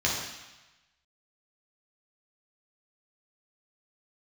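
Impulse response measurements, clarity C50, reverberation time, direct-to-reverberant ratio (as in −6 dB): 1.5 dB, 1.1 s, −5.0 dB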